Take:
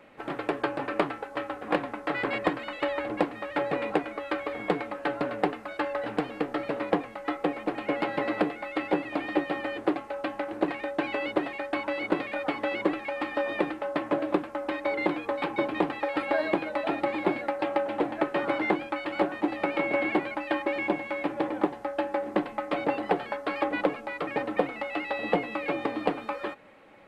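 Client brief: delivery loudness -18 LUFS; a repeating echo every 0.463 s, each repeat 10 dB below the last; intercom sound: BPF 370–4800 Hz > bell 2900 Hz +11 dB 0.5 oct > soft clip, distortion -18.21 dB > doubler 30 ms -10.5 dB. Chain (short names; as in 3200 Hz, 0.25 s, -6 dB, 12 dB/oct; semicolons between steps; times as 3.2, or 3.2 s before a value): BPF 370–4800 Hz; bell 2900 Hz +11 dB 0.5 oct; feedback echo 0.463 s, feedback 32%, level -10 dB; soft clip -17 dBFS; doubler 30 ms -10.5 dB; gain +11.5 dB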